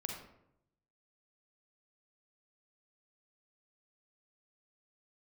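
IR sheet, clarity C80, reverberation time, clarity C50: 6.5 dB, 0.80 s, 2.5 dB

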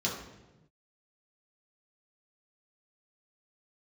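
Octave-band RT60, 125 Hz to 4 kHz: 1.8, 1.3, 1.2, 0.95, 0.90, 0.80 seconds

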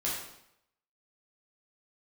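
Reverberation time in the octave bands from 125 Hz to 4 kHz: 0.80, 0.75, 0.75, 0.75, 0.70, 0.70 seconds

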